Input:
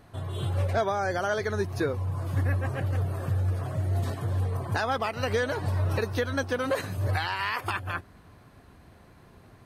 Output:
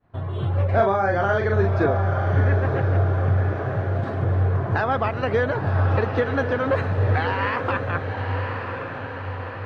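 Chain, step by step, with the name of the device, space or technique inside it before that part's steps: hearing-loss simulation (LPF 2100 Hz 12 dB/oct; expander -44 dBFS); 0.68–1.86 doubler 41 ms -3 dB; diffused feedback echo 1.03 s, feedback 60%, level -6 dB; gain +5.5 dB

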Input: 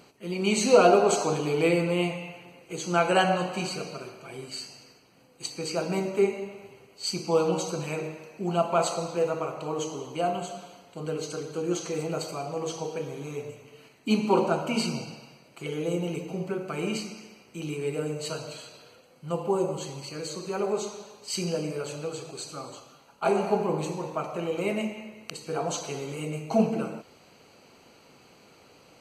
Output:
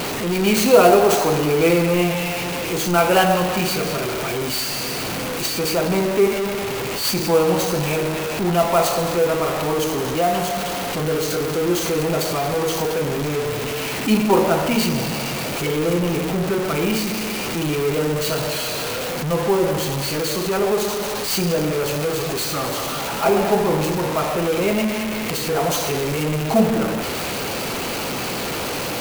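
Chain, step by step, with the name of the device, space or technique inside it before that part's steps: early CD player with a faulty converter (zero-crossing step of -24 dBFS; clock jitter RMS 0.026 ms); gain +4.5 dB

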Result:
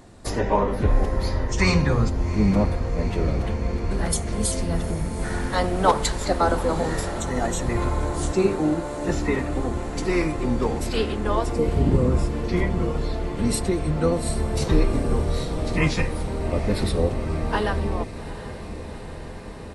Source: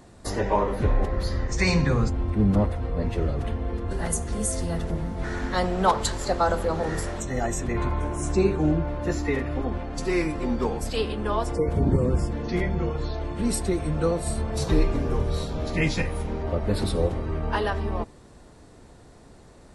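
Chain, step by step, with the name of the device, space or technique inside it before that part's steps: 8.32–9.09 HPF 220 Hz 24 dB/oct; octave pedal (harmoniser -12 st -8 dB); diffused feedback echo 0.804 s, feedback 76%, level -14 dB; gain +1.5 dB

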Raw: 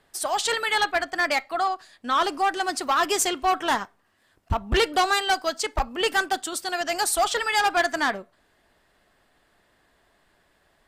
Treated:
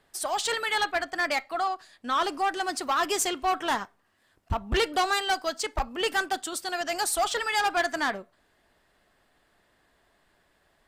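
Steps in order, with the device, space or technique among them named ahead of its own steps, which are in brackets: parallel distortion (in parallel at -12 dB: hard clip -27 dBFS, distortion -6 dB); on the sum: gain -4.5 dB

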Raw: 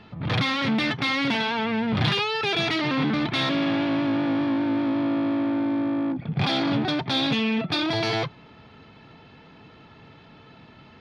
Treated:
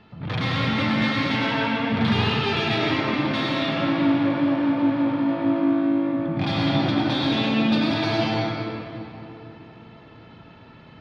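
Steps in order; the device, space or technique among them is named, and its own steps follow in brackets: 2.99–3.63 HPF 250 Hz 6 dB/oct; swimming-pool hall (reverb RT60 3.2 s, pre-delay 85 ms, DRR -4 dB; high shelf 4500 Hz -5 dB); gain -3.5 dB

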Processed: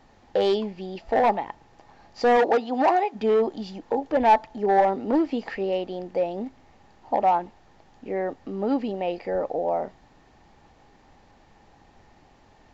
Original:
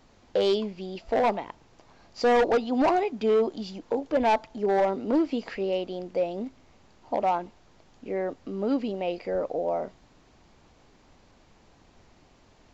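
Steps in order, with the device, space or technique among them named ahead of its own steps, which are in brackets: inside a helmet (high shelf 4600 Hz -6 dB; small resonant body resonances 820/1800 Hz, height 10 dB, ringing for 35 ms); 2.36–3.14 HPF 160 Hz -> 490 Hz 12 dB/oct; gain +1.5 dB

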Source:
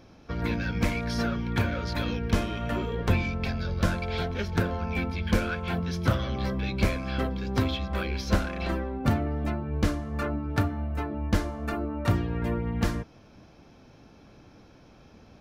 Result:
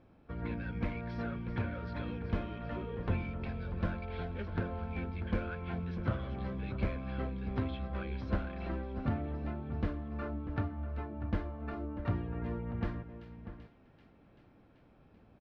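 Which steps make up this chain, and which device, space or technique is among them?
shout across a valley (air absorption 400 m; outdoor echo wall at 110 m, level -11 dB); thin delay 0.386 s, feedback 71%, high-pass 2700 Hz, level -10.5 dB; gain -8.5 dB

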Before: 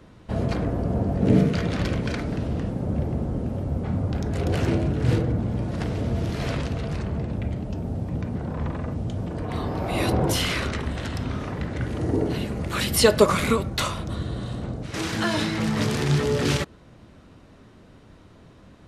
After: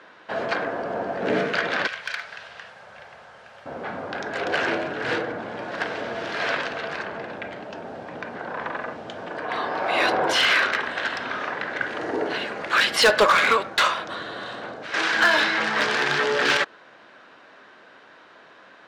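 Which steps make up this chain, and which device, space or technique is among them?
megaphone (BPF 680–3900 Hz; bell 1600 Hz +9 dB 0.23 oct; hard clip -20.5 dBFS, distortion -13 dB); 1.87–3.66 passive tone stack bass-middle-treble 10-0-10; gain +8.5 dB

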